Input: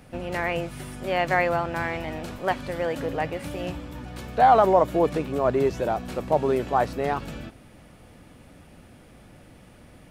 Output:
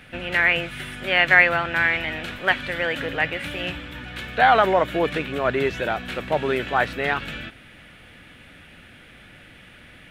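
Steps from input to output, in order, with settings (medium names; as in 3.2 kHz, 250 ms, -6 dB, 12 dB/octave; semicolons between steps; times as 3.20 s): high-order bell 2.3 kHz +13.5 dB; trim -1 dB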